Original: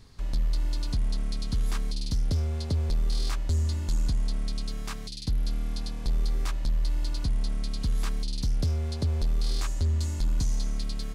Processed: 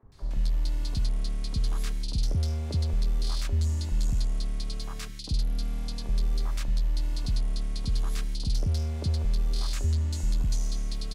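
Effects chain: three bands offset in time mids, lows, highs 30/120 ms, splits 290/1300 Hz

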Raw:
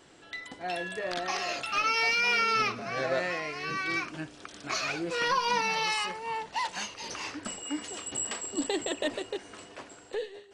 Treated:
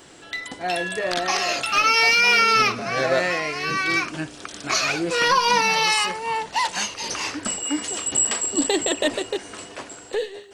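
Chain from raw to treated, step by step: high shelf 7500 Hz +9 dB; gain +8.5 dB

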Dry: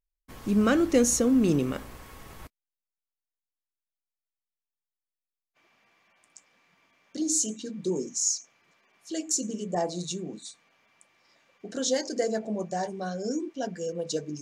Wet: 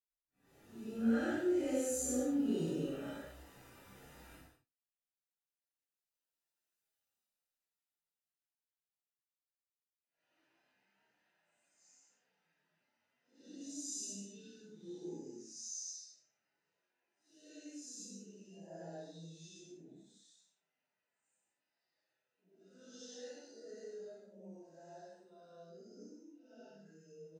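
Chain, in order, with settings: phase scrambler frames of 0.2 s; Doppler pass-by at 3.62, 23 m/s, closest 5.5 m; notch comb 1100 Hz; plain phase-vocoder stretch 1.9×; early reflections 31 ms -3 dB, 61 ms -5 dB; gain +8 dB

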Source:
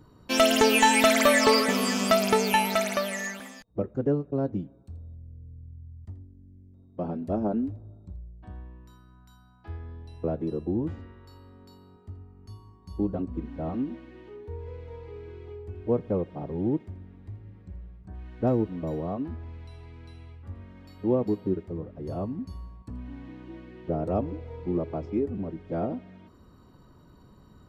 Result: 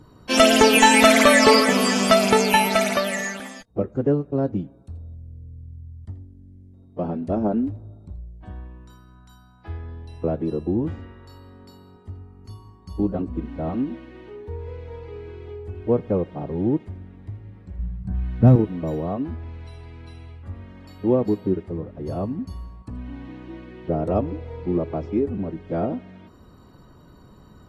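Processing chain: 17.79–18.56 resonant low shelf 250 Hz +10 dB, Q 1.5; gain +5 dB; AAC 32 kbps 44100 Hz

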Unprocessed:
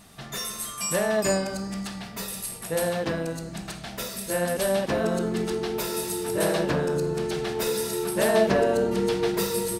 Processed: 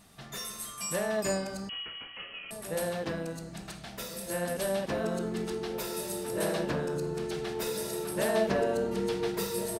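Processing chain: outdoor echo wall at 240 m, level -13 dB; 1.69–2.51 inverted band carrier 3100 Hz; gain -6.5 dB

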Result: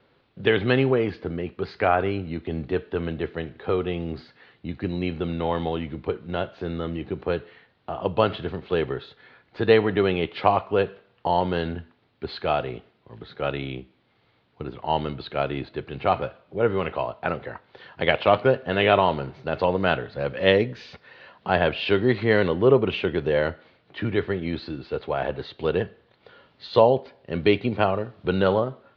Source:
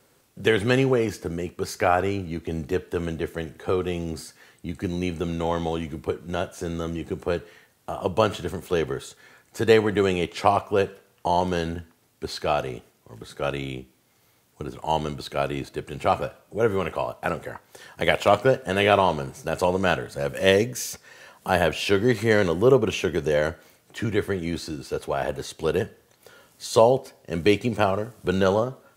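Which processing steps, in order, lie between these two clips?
steep low-pass 4200 Hz 48 dB/oct

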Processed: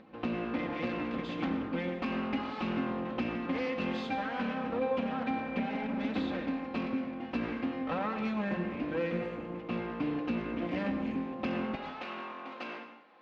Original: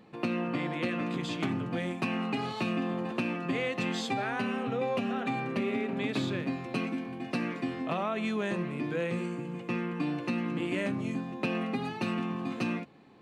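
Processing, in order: minimum comb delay 3.8 ms; HPF 73 Hz 12 dB/oct, from 11.75 s 580 Hz; upward compressor, threshold -52 dBFS; air absorption 260 m; plate-style reverb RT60 0.86 s, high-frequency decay 0.8×, pre-delay 80 ms, DRR 8 dB

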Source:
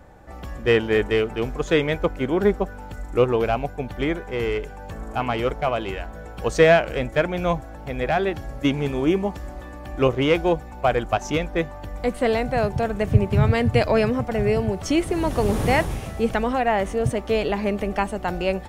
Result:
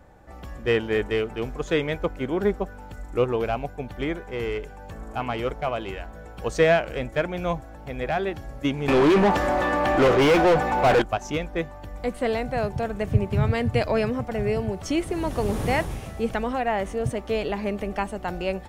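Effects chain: 8.88–11.02 overdrive pedal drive 35 dB, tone 1600 Hz, clips at -6 dBFS; gain -4 dB

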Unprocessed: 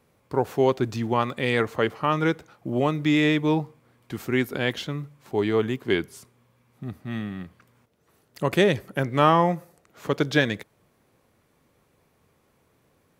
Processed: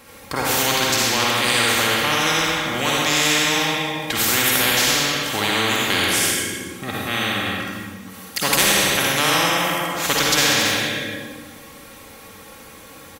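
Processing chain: tilt shelf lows -5.5 dB; comb 3.7 ms, depth 50%; reverb RT60 1.2 s, pre-delay 46 ms, DRR -5 dB; spectral compressor 4:1; gain -2 dB

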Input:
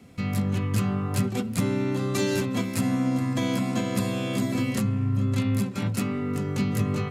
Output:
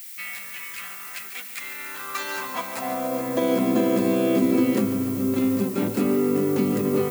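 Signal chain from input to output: tilt -2.5 dB/oct; limiter -12.5 dBFS, peak gain reduction 6.5 dB; added noise violet -42 dBFS; high-pass sweep 2000 Hz -> 340 Hz, 1.69–3.7; on a send: thinning echo 0.144 s, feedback 75%, high-pass 190 Hz, level -12 dB; on the sum: gain +2.5 dB

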